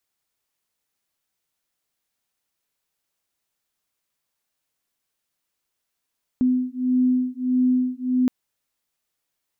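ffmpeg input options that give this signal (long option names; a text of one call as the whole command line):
ffmpeg -f lavfi -i "aevalsrc='0.0891*(sin(2*PI*252*t)+sin(2*PI*253.6*t))':duration=1.87:sample_rate=44100" out.wav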